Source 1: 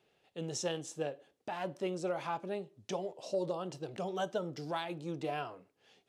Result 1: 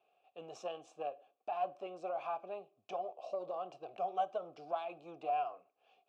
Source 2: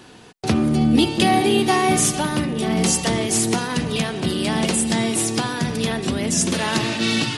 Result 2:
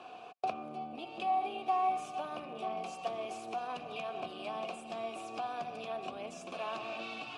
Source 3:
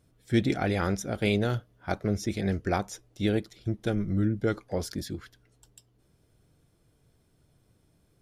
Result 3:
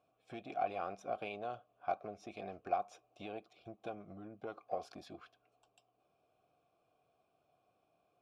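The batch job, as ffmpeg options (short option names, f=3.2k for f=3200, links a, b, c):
-filter_complex "[0:a]acompressor=threshold=-31dB:ratio=8,aeval=exprs='0.141*(cos(1*acos(clip(val(0)/0.141,-1,1)))-cos(1*PI/2))+0.00501*(cos(8*acos(clip(val(0)/0.141,-1,1)))-cos(8*PI/2))':c=same,asplit=3[a][b][c];[a]bandpass=f=730:t=q:w=8,volume=0dB[d];[b]bandpass=f=1.09k:t=q:w=8,volume=-6dB[e];[c]bandpass=f=2.44k:t=q:w=8,volume=-9dB[f];[d][e][f]amix=inputs=3:normalize=0,volume=8dB"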